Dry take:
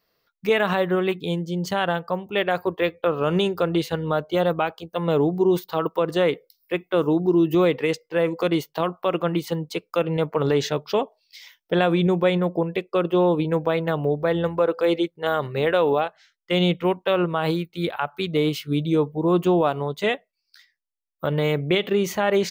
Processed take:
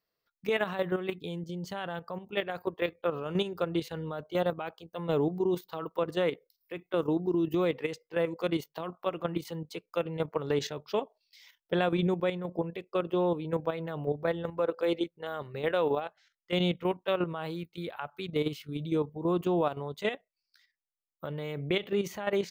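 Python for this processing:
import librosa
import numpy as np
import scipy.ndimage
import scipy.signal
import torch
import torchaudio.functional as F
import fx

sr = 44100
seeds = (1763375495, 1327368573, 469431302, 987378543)

y = fx.level_steps(x, sr, step_db=10)
y = y * 10.0 ** (-6.0 / 20.0)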